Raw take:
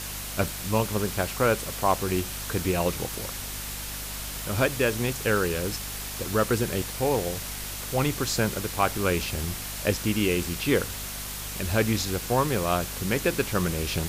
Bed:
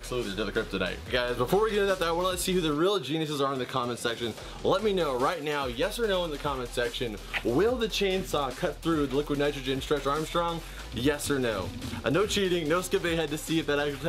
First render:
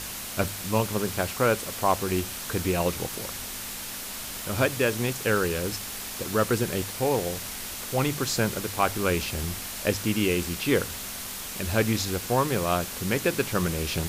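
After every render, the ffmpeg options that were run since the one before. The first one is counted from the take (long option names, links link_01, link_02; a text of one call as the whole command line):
ffmpeg -i in.wav -af "bandreject=frequency=50:width_type=h:width=4,bandreject=frequency=100:width_type=h:width=4,bandreject=frequency=150:width_type=h:width=4" out.wav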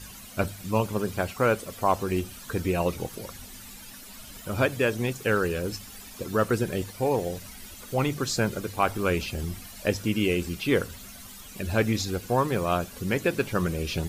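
ffmpeg -i in.wav -af "afftdn=noise_reduction=13:noise_floor=-36" out.wav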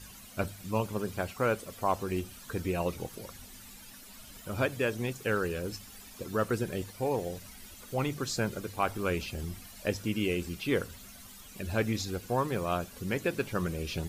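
ffmpeg -i in.wav -af "volume=-5.5dB" out.wav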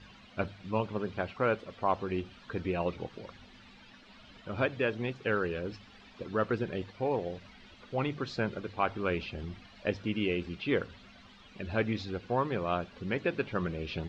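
ffmpeg -i in.wav -af "lowpass=frequency=3900:width=0.5412,lowpass=frequency=3900:width=1.3066,lowshelf=frequency=75:gain=-8.5" out.wav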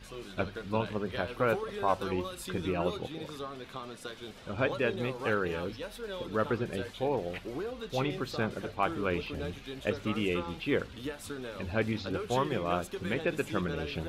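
ffmpeg -i in.wav -i bed.wav -filter_complex "[1:a]volume=-12.5dB[link_01];[0:a][link_01]amix=inputs=2:normalize=0" out.wav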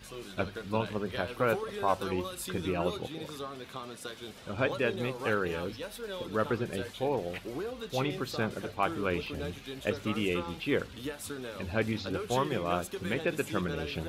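ffmpeg -i in.wav -af "highpass=47,highshelf=frequency=7100:gain=7.5" out.wav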